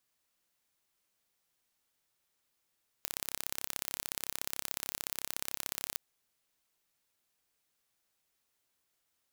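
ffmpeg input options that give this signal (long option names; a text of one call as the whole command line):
ffmpeg -f lavfi -i "aevalsrc='0.447*eq(mod(n,1309),0)*(0.5+0.5*eq(mod(n,2618),0))':duration=2.92:sample_rate=44100" out.wav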